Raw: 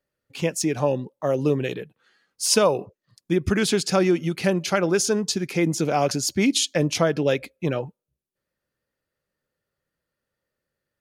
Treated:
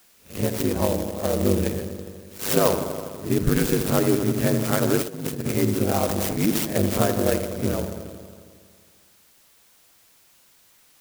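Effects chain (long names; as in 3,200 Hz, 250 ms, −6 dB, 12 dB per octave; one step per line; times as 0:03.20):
peak hold with a rise ahead of every peak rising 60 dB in 0.32 s
bass and treble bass +5 dB, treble −4 dB
delay with a low-pass on its return 82 ms, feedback 75%, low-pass 1,800 Hz, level −8.5 dB
0:05.02–0:05.52: compressor whose output falls as the input rises −25 dBFS, ratio −0.5
0:06.06–0:06.50: transient designer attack −9 dB, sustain +8 dB
ring modulation 50 Hz
steady tone 8,900 Hz −53 dBFS
converter with an unsteady clock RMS 0.084 ms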